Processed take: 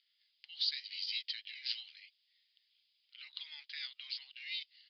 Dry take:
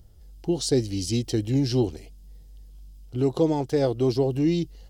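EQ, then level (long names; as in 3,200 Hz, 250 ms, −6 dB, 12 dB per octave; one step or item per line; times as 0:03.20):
elliptic high-pass filter 2,100 Hz, stop band 80 dB
Chebyshev low-pass with heavy ripple 4,900 Hz, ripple 3 dB
high-frequency loss of the air 100 metres
+5.5 dB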